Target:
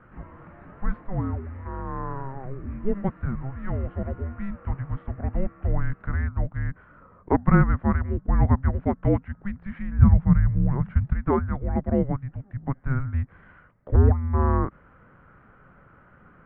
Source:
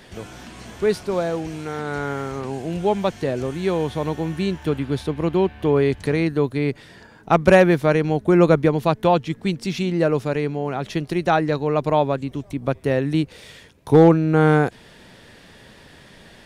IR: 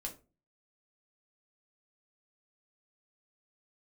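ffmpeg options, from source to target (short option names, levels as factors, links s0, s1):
-filter_complex "[0:a]highpass=f=220:t=q:w=0.5412,highpass=f=220:t=q:w=1.307,lowpass=f=2100:t=q:w=0.5176,lowpass=f=2100:t=q:w=0.7071,lowpass=f=2100:t=q:w=1.932,afreqshift=-400,asettb=1/sr,asplit=3[s0][s1][s2];[s0]atrim=end=9.994[s3];[s1]atrim=start=9.99:end=11.15,asetpts=PTS-STARTPTS,afade=t=in:d=0.004:c=qsin,afade=t=out:st=1.156:d=0.004:c=qsin,lowshelf=f=220:t=q:w=3:g=8[s4];[s2]atrim=start=11.146[s5];[s3][s4]acrossfade=d=0.004:c1=hsin:c2=qsin[s6];[s6][s5]acrossfade=d=0.004:c1=qsin:c2=hsin,volume=0.668"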